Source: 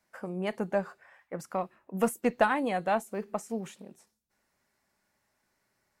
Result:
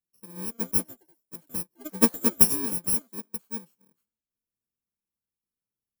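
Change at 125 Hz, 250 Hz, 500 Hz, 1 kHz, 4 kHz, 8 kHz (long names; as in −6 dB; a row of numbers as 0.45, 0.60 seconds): +1.0, +2.5, −6.5, −10.0, +8.0, +18.5 decibels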